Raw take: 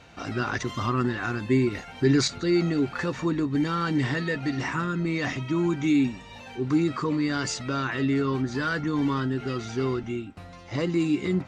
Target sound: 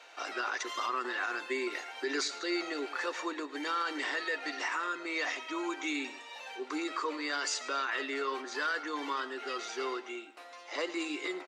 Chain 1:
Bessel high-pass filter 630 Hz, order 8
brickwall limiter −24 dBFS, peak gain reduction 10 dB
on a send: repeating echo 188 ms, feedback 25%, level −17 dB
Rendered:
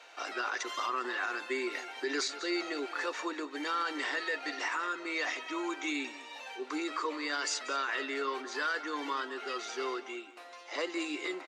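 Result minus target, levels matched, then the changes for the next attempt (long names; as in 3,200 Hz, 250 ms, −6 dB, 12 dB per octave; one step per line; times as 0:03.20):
echo 78 ms late
change: repeating echo 110 ms, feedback 25%, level −17 dB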